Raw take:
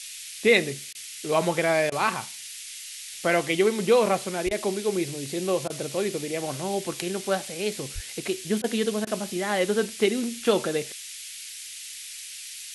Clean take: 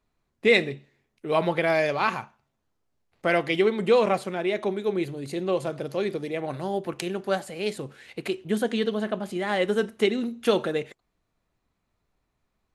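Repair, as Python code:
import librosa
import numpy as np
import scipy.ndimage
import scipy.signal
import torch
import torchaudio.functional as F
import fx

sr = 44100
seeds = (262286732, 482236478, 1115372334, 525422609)

y = fx.highpass(x, sr, hz=140.0, slope=24, at=(4.45, 4.57), fade=0.02)
y = fx.highpass(y, sr, hz=140.0, slope=24, at=(7.94, 8.06), fade=0.02)
y = fx.fix_interpolate(y, sr, at_s=(0.93, 1.9, 4.49, 5.68, 8.62, 9.05), length_ms=18.0)
y = fx.noise_reduce(y, sr, print_start_s=0.74, print_end_s=1.24, reduce_db=30.0)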